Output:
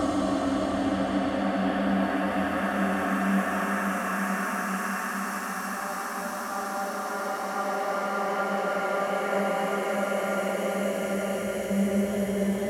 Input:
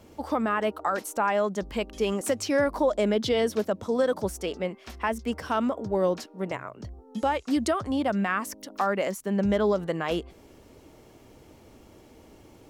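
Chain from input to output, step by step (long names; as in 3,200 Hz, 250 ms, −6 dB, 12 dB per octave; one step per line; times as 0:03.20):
tape wow and flutter 30 cents
extreme stretch with random phases 8.8×, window 1.00 s, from 0:07.88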